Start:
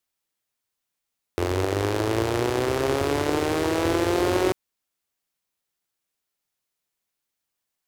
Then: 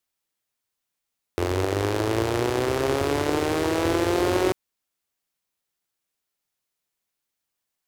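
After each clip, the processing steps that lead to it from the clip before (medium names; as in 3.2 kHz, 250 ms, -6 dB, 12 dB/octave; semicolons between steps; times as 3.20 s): no audible change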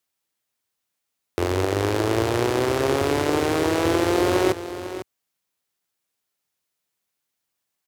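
high-pass 64 Hz; delay 500 ms -12 dB; trim +2 dB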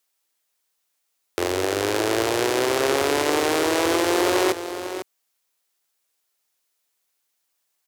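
tone controls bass -13 dB, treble +3 dB; transformer saturation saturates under 1.6 kHz; trim +3.5 dB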